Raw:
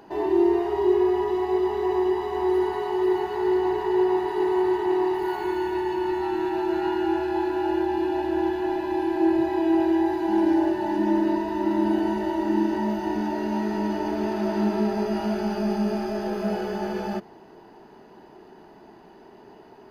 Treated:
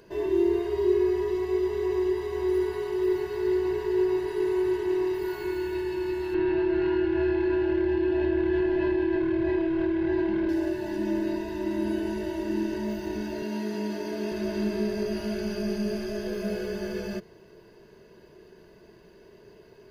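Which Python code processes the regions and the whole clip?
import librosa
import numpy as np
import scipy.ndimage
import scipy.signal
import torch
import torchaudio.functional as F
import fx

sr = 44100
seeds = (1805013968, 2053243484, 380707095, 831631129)

y = fx.chain(x, sr, fx.clip_hard(threshold_db=-18.0),
    fx.air_absorb(metres=300.0),
    fx.env_flatten(amount_pct=100), at=(6.34, 10.49))
y = fx.chain(y, sr, fx.highpass(hz=170.0, slope=12),
    fx.comb(ms=4.3, depth=0.33), at=(13.42, 14.32))
y = fx.peak_eq(y, sr, hz=890.0, db=-14.5, octaves=1.2)
y = y + 0.67 * np.pad(y, (int(1.9 * sr / 1000.0), 0))[:len(y)]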